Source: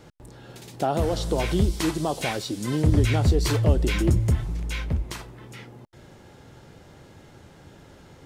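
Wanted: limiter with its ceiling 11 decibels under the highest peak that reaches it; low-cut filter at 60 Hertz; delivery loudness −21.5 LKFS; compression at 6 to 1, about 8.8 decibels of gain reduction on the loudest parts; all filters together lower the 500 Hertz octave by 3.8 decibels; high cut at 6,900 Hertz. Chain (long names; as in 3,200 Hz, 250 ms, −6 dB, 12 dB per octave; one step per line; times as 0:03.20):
high-pass filter 60 Hz
low-pass filter 6,900 Hz
parametric band 500 Hz −5 dB
downward compressor 6 to 1, threshold −25 dBFS
level +15 dB
brickwall limiter −12 dBFS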